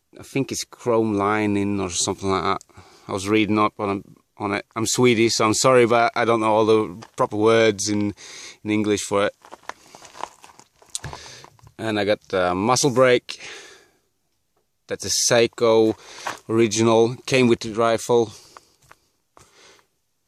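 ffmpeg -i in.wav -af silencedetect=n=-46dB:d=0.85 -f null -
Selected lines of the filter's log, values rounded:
silence_start: 13.83
silence_end: 14.89 | silence_duration: 1.06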